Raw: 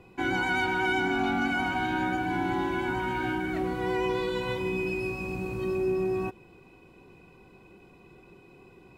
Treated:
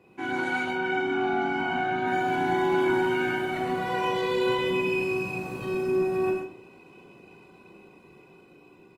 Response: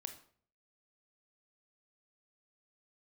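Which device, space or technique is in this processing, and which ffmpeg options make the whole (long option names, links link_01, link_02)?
far-field microphone of a smart speaker: -filter_complex "[0:a]asplit=3[link_01][link_02][link_03];[link_01]afade=type=out:start_time=0.6:duration=0.02[link_04];[link_02]aemphasis=mode=reproduction:type=75kf,afade=type=in:start_time=0.6:duration=0.02,afade=type=out:start_time=2.06:duration=0.02[link_05];[link_03]afade=type=in:start_time=2.06:duration=0.02[link_06];[link_04][link_05][link_06]amix=inputs=3:normalize=0,aecho=1:1:40|94|107|131|169:0.668|0.355|0.398|0.531|0.15[link_07];[1:a]atrim=start_sample=2205[link_08];[link_07][link_08]afir=irnorm=-1:irlink=0,highpass=150,dynaudnorm=framelen=360:gausssize=9:maxgain=4dB" -ar 48000 -c:a libopus -b:a 24k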